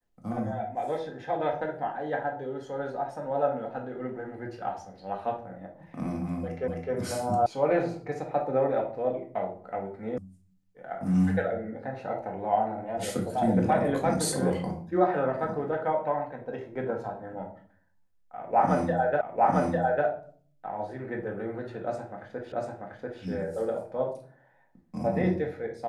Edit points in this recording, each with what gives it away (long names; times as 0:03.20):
0:06.68: the same again, the last 0.26 s
0:07.46: cut off before it has died away
0:10.18: cut off before it has died away
0:19.21: the same again, the last 0.85 s
0:22.52: the same again, the last 0.69 s